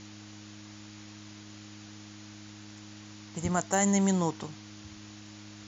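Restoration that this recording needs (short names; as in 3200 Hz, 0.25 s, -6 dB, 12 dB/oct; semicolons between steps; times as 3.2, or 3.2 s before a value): clip repair -13.5 dBFS; de-hum 104.3 Hz, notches 3; noise print and reduce 27 dB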